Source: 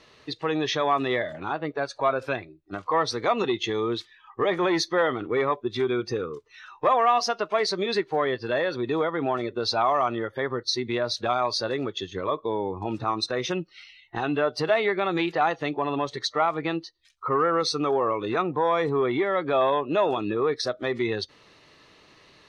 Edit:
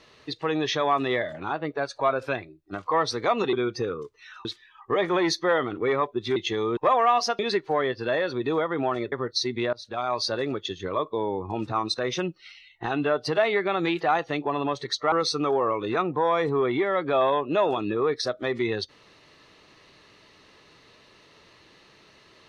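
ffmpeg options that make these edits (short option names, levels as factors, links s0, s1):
-filter_complex "[0:a]asplit=9[s0][s1][s2][s3][s4][s5][s6][s7][s8];[s0]atrim=end=3.532[s9];[s1]atrim=start=5.848:end=6.772[s10];[s2]atrim=start=3.938:end=5.852[s11];[s3]atrim=start=3.528:end=3.942[s12];[s4]atrim=start=6.768:end=7.392[s13];[s5]atrim=start=7.818:end=9.552[s14];[s6]atrim=start=10.438:end=11.05,asetpts=PTS-STARTPTS,afade=t=out:st=0.608:d=0.004:c=hsin:silence=0.0749894[s15];[s7]atrim=start=11.05:end=16.442,asetpts=PTS-STARTPTS,afade=t=in:d=0.49:silence=0.0749894[s16];[s8]atrim=start=17.518[s17];[s9][s10]acrossfade=d=0.004:c1=hsin:c2=hsin[s18];[s18][s11]acrossfade=d=0.004:c1=hsin:c2=hsin[s19];[s19][s12]acrossfade=d=0.004:c1=hsin:c2=hsin[s20];[s20][s13]acrossfade=d=0.004:c1=hsin:c2=hsin[s21];[s21][s14]acrossfade=d=0.004:c1=hsin:c2=hsin[s22];[s15][s16]concat=n=2:v=0:a=1[s23];[s22][s23]acrossfade=d=0.004:c1=hsin:c2=hsin[s24];[s24][s17]acrossfade=d=0.004:c1=hsin:c2=hsin"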